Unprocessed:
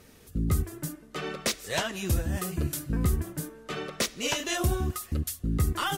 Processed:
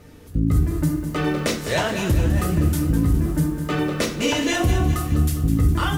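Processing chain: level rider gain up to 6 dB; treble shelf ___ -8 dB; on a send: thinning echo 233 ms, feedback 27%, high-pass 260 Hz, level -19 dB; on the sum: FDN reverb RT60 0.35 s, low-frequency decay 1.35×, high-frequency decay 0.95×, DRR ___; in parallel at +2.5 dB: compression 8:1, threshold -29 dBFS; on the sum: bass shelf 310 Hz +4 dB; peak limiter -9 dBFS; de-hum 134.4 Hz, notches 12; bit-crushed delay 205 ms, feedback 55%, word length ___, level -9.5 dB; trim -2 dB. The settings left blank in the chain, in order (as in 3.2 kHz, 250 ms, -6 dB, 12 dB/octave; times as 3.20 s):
2.8 kHz, 3 dB, 7-bit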